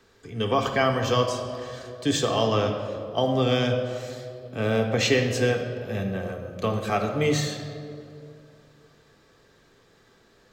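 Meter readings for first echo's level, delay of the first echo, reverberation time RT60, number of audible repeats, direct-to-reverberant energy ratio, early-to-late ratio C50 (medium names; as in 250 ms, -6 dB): no echo, no echo, 2.6 s, no echo, 2.0 dB, 6.5 dB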